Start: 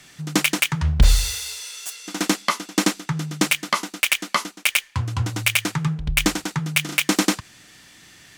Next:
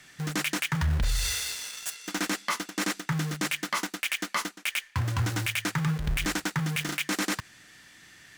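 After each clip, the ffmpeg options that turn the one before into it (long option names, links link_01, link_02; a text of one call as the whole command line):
ffmpeg -i in.wav -filter_complex "[0:a]asplit=2[link_01][link_02];[link_02]acrusher=bits=4:mix=0:aa=0.000001,volume=-4dB[link_03];[link_01][link_03]amix=inputs=2:normalize=0,alimiter=limit=-13dB:level=0:latency=1:release=13,equalizer=frequency=1700:width=1.9:gain=6,volume=-6.5dB" out.wav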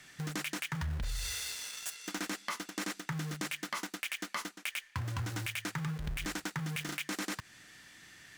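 ffmpeg -i in.wav -af "acompressor=threshold=-34dB:ratio=2.5,volume=-2.5dB" out.wav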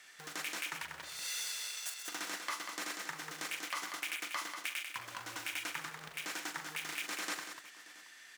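ffmpeg -i in.wav -filter_complex "[0:a]highpass=520,asplit=2[link_01][link_02];[link_02]aecho=0:1:41|128|191|261|359|675:0.376|0.316|0.473|0.141|0.112|0.133[link_03];[link_01][link_03]amix=inputs=2:normalize=0,volume=-2dB" out.wav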